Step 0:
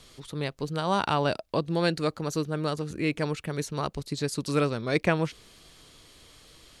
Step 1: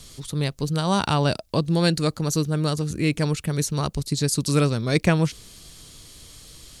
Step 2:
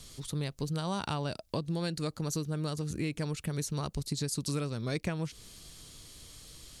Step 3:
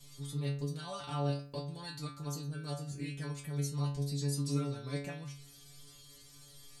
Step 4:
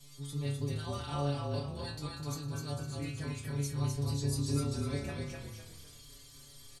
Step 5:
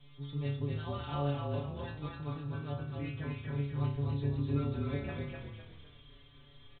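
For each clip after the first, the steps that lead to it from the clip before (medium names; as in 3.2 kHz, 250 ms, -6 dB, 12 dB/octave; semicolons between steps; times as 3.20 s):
tone controls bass +9 dB, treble +11 dB; trim +1.5 dB
compression, threshold -24 dBFS, peak gain reduction 11 dB; trim -5.5 dB
inharmonic resonator 140 Hz, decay 0.54 s, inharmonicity 0.002; trim +8 dB
frequency-shifting echo 253 ms, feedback 35%, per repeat -32 Hz, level -3.5 dB
resampled via 8 kHz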